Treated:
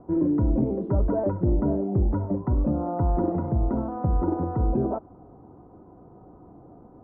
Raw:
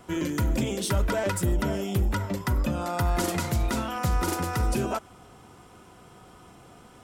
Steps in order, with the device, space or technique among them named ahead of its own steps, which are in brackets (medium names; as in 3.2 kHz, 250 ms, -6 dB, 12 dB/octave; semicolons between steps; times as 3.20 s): under water (low-pass 860 Hz 24 dB/octave; peaking EQ 300 Hz +7 dB 0.33 oct); trim +2 dB